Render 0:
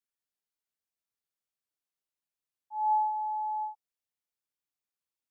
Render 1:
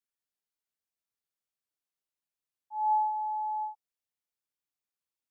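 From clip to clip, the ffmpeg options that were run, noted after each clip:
ffmpeg -i in.wav -af anull out.wav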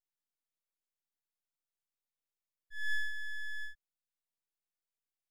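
ffmpeg -i in.wav -af "aeval=exprs='abs(val(0))':channel_layout=same,volume=-3.5dB" out.wav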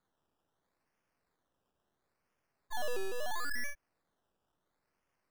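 ffmpeg -i in.wav -af "acompressor=threshold=-42dB:ratio=5,acrusher=samples=16:mix=1:aa=0.000001:lfo=1:lforange=9.6:lforate=0.74,volume=10.5dB" out.wav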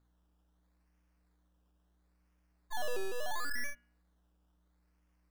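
ffmpeg -i in.wav -af "aeval=exprs='val(0)+0.000282*(sin(2*PI*60*n/s)+sin(2*PI*2*60*n/s)/2+sin(2*PI*3*60*n/s)/3+sin(2*PI*4*60*n/s)/4+sin(2*PI*5*60*n/s)/5)':channel_layout=same,bandreject=frequency=119.8:width_type=h:width=4,bandreject=frequency=239.6:width_type=h:width=4,bandreject=frequency=359.4:width_type=h:width=4,bandreject=frequency=479.2:width_type=h:width=4,bandreject=frequency=599:width_type=h:width=4,bandreject=frequency=718.8:width_type=h:width=4,bandreject=frequency=838.6:width_type=h:width=4,bandreject=frequency=958.4:width_type=h:width=4,bandreject=frequency=1078.2:width_type=h:width=4,bandreject=frequency=1198:width_type=h:width=4,bandreject=frequency=1317.8:width_type=h:width=4,bandreject=frequency=1437.6:width_type=h:width=4,bandreject=frequency=1557.4:width_type=h:width=4,bandreject=frequency=1677.2:width_type=h:width=4,bandreject=frequency=1797:width_type=h:width=4,bandreject=frequency=1916.8:width_type=h:width=4,bandreject=frequency=2036.6:width_type=h:width=4,bandreject=frequency=2156.4:width_type=h:width=4,bandreject=frequency=2276.2:width_type=h:width=4,bandreject=frequency=2396:width_type=h:width=4,bandreject=frequency=2515.8:width_type=h:width=4,bandreject=frequency=2635.6:width_type=h:width=4,bandreject=frequency=2755.4:width_type=h:width=4,bandreject=frequency=2875.2:width_type=h:width=4,bandreject=frequency=2995:width_type=h:width=4,bandreject=frequency=3114.8:width_type=h:width=4,bandreject=frequency=3234.6:width_type=h:width=4,bandreject=frequency=3354.4:width_type=h:width=4" out.wav

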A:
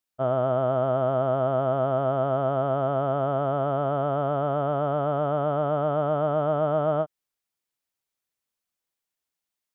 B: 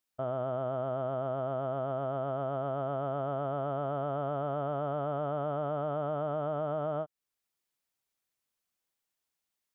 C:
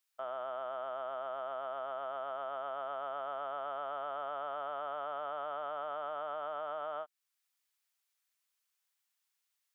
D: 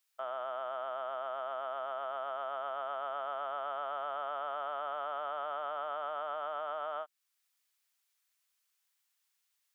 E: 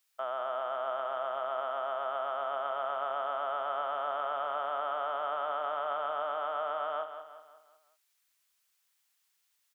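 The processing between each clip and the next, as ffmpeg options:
ffmpeg -i in.wav -af "alimiter=limit=-23.5dB:level=0:latency=1:release=439" out.wav
ffmpeg -i in.wav -af "highpass=1100,volume=3dB" out.wav
ffmpeg -i in.wav -af "lowshelf=frequency=370:gain=-11.5,volume=3.5dB" out.wav
ffmpeg -i in.wav -af "aecho=1:1:183|366|549|732|915:0.335|0.154|0.0709|0.0326|0.015,volume=3.5dB" out.wav

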